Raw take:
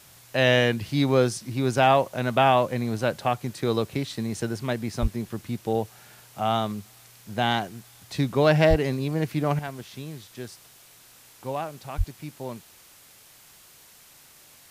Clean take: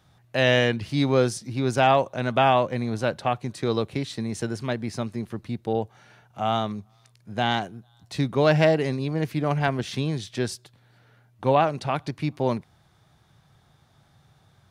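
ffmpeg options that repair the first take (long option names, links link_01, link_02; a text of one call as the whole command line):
ffmpeg -i in.wav -filter_complex "[0:a]adeclick=threshold=4,asplit=3[link_01][link_02][link_03];[link_01]afade=type=out:start_time=5.01:duration=0.02[link_04];[link_02]highpass=frequency=140:width=0.5412,highpass=frequency=140:width=1.3066,afade=type=in:start_time=5.01:duration=0.02,afade=type=out:start_time=5.13:duration=0.02[link_05];[link_03]afade=type=in:start_time=5.13:duration=0.02[link_06];[link_04][link_05][link_06]amix=inputs=3:normalize=0,asplit=3[link_07][link_08][link_09];[link_07]afade=type=out:start_time=8.69:duration=0.02[link_10];[link_08]highpass=frequency=140:width=0.5412,highpass=frequency=140:width=1.3066,afade=type=in:start_time=8.69:duration=0.02,afade=type=out:start_time=8.81:duration=0.02[link_11];[link_09]afade=type=in:start_time=8.81:duration=0.02[link_12];[link_10][link_11][link_12]amix=inputs=3:normalize=0,asplit=3[link_13][link_14][link_15];[link_13]afade=type=out:start_time=11.97:duration=0.02[link_16];[link_14]highpass=frequency=140:width=0.5412,highpass=frequency=140:width=1.3066,afade=type=in:start_time=11.97:duration=0.02,afade=type=out:start_time=12.09:duration=0.02[link_17];[link_15]afade=type=in:start_time=12.09:duration=0.02[link_18];[link_16][link_17][link_18]amix=inputs=3:normalize=0,afwtdn=0.0028,asetnsamples=nb_out_samples=441:pad=0,asendcmd='9.59 volume volume 11dB',volume=0dB" out.wav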